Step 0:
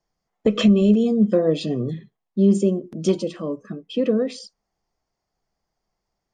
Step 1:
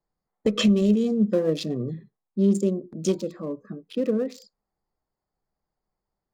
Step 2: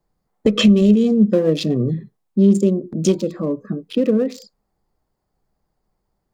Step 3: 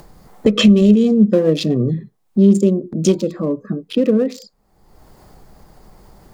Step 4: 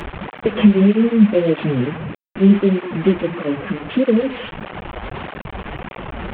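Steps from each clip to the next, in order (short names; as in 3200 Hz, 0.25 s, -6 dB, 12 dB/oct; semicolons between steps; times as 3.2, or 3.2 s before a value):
Wiener smoothing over 15 samples; high shelf 3800 Hz +12 dB; notch 680 Hz, Q 12; gain -4 dB
dynamic EQ 2800 Hz, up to +4 dB, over -45 dBFS, Q 1.3; in parallel at +3 dB: compressor, threshold -29 dBFS, peak gain reduction 13.5 dB; on the sum: low shelf 470 Hz +5.5 dB
upward compressor, threshold -25 dBFS; gain +2 dB
delta modulation 16 kbps, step -19.5 dBFS; tape flanging out of phase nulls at 1.6 Hz, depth 7.9 ms; gain +1 dB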